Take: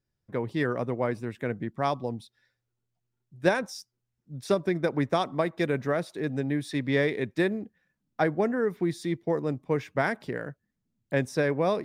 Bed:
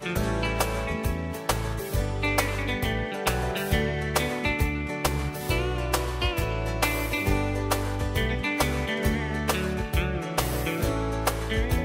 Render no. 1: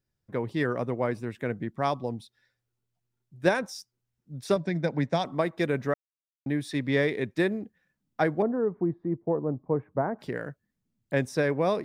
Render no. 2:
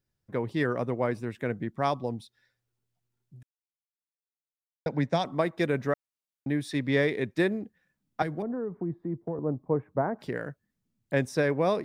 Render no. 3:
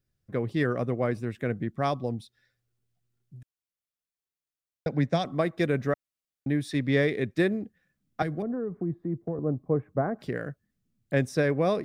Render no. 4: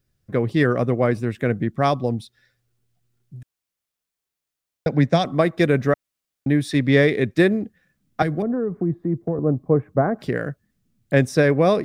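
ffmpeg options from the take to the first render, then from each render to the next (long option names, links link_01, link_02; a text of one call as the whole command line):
ffmpeg -i in.wav -filter_complex "[0:a]asettb=1/sr,asplit=3[link_01][link_02][link_03];[link_01]atrim=end=4.564[link_04];[link_02]atrim=start=4.56:end=5.25,asetpts=PTS-STARTPTS,afade=type=in:duration=0.004:curve=qsin,afade=type=out:start_time=0.686:duration=0.004:curve=qsin,highpass=120,equalizer=frequency=160:width_type=q:width=4:gain=6,equalizer=frequency=380:width_type=q:width=4:gain=-8,equalizer=frequency=1200:width_type=q:width=4:gain=-10,equalizer=frequency=2900:width_type=q:width=4:gain=-3,equalizer=frequency=4400:width_type=q:width=4:gain=3,lowpass=frequency=7800:width=0.5412,lowpass=frequency=7800:width=1.3066[link_05];[link_03]atrim=start=5.246[link_06];[link_04][link_05]acrossfade=duration=0.004:curve1=hsin:curve2=qsin[link_07];[link_07][link_06]acrossfade=duration=0.004:curve1=qsin:curve2=hsin,asettb=1/sr,asplit=3[link_08][link_09][link_10];[link_08]atrim=end=8.424[link_11];[link_09]atrim=start=8.42:end=10.19,asetpts=PTS-STARTPTS,afade=type=in:duration=0.004:curve=qsin,afade=type=out:start_time=1.766:duration=0.004:curve=qsin,lowpass=frequency=1100:width=0.5412,lowpass=frequency=1100:width=1.3066[link_12];[link_10]atrim=start=10.186[link_13];[link_11][link_12]acrossfade=duration=0.004:curve1=hsin:curve2=qsin[link_14];[link_14][link_13]acrossfade=duration=0.004:curve1=qsin:curve2=hsin,asplit=3[link_15][link_16][link_17];[link_15]atrim=end=5.94,asetpts=PTS-STARTPTS,afade=type=out:start_time=5.936:duration=0.004:curve=hsin[link_18];[link_16]atrim=start=5.94:end=6.46,asetpts=PTS-STARTPTS,volume=0[link_19];[link_17]atrim=start=6.46,asetpts=PTS-STARTPTS,afade=type=in:duration=0.004:curve=hsin[link_20];[link_18][link_19][link_20]concat=n=3:v=0:a=1" out.wav
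ffmpeg -i in.wav -filter_complex "[0:a]asettb=1/sr,asplit=3[link_01][link_02][link_03];[link_01]atrim=end=8.224[link_04];[link_02]atrim=start=8.22:end=9.39,asetpts=PTS-STARTPTS,afade=type=in:duration=0.004:curve=qsin,afade=type=out:start_time=1.166:duration=0.004:curve=qsin,acrossover=split=170|3000[link_05][link_06][link_07];[link_06]acompressor=threshold=-31dB:ratio=5:attack=3.2:release=140:knee=2.83:detection=peak[link_08];[link_05][link_08][link_07]amix=inputs=3:normalize=0[link_09];[link_03]atrim=start=9.386[link_10];[link_04][link_09]acrossfade=duration=0.004:curve1=hsin:curve2=qsin[link_11];[link_11][link_10]acrossfade=duration=0.004:curve1=qsin:curve2=hsin,asplit=3[link_12][link_13][link_14];[link_12]atrim=end=3.43,asetpts=PTS-STARTPTS,afade=type=out:start_time=3.426:duration=0.004:curve=hsin[link_15];[link_13]atrim=start=3.43:end=4.86,asetpts=PTS-STARTPTS,volume=0[link_16];[link_14]atrim=start=4.86,asetpts=PTS-STARTPTS,afade=type=in:duration=0.004:curve=hsin[link_17];[link_15][link_16][link_17]concat=n=3:v=0:a=1" out.wav
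ffmpeg -i in.wav -af "lowshelf=frequency=170:gain=5.5,bandreject=frequency=920:width=5.1" out.wav
ffmpeg -i in.wav -af "volume=8dB" out.wav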